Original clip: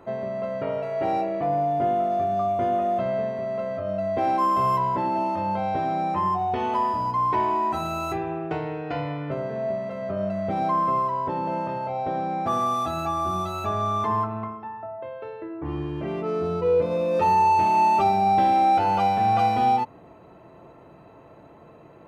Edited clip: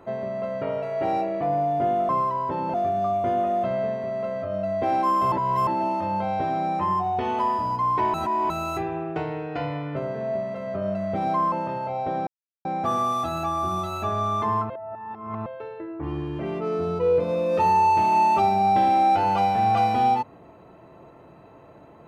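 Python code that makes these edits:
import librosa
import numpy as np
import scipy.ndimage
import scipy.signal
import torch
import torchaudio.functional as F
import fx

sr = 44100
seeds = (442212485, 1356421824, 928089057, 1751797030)

y = fx.edit(x, sr, fx.reverse_span(start_s=4.67, length_s=0.35),
    fx.reverse_span(start_s=7.49, length_s=0.36),
    fx.move(start_s=10.87, length_s=0.65, to_s=2.09),
    fx.insert_silence(at_s=12.27, length_s=0.38),
    fx.reverse_span(start_s=14.32, length_s=0.76), tone=tone)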